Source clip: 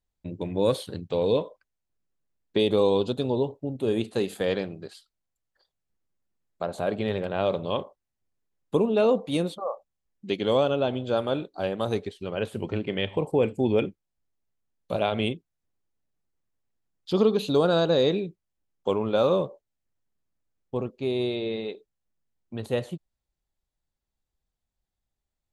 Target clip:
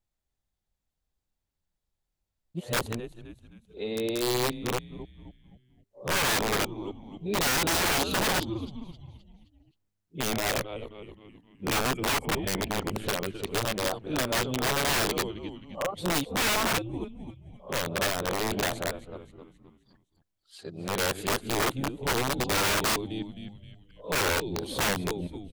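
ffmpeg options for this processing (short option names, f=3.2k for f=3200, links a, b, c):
-filter_complex "[0:a]areverse,asplit=6[a][b][c][d][e][f];[b]adelay=262,afreqshift=-100,volume=-13dB[g];[c]adelay=524,afreqshift=-200,volume=-19.7dB[h];[d]adelay=786,afreqshift=-300,volume=-26.5dB[i];[e]adelay=1048,afreqshift=-400,volume=-33.2dB[j];[f]adelay=1310,afreqshift=-500,volume=-40dB[k];[a][g][h][i][j][k]amix=inputs=6:normalize=0,aeval=exprs='(mod(11.2*val(0)+1,2)-1)/11.2':c=same"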